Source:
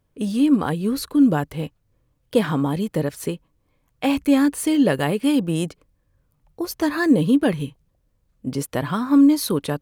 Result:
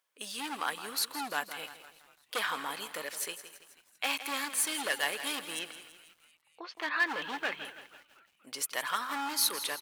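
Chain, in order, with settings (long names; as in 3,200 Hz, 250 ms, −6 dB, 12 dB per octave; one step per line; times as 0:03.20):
0:05.59–0:07.65: inverse Chebyshev low-pass filter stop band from 10,000 Hz, stop band 60 dB
echo with shifted repeats 241 ms, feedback 60%, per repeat −75 Hz, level −21 dB
gain into a clipping stage and back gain 15.5 dB
high-pass filter 1,300 Hz 12 dB per octave
feedback echo at a low word length 165 ms, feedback 55%, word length 9 bits, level −12 dB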